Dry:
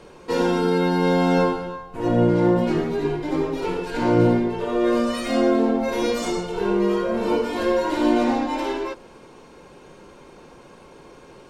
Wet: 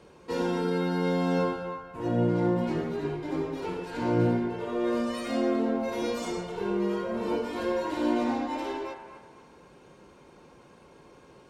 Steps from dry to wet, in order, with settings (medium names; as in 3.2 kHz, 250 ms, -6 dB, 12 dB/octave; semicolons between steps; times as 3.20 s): high-pass 46 Hz; tone controls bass +3 dB, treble 0 dB; feedback echo behind a band-pass 248 ms, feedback 34%, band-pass 1.2 kHz, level -7 dB; trim -8.5 dB